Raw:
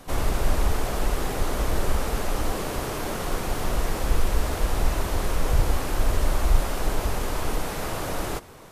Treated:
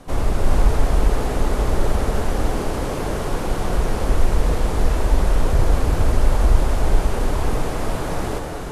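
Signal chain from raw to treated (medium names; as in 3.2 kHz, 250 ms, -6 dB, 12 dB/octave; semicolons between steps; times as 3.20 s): low-pass 12 kHz 24 dB/octave; tilt shelf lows +3.5 dB, about 1.1 kHz; gated-style reverb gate 440 ms rising, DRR 2 dB; trim +1 dB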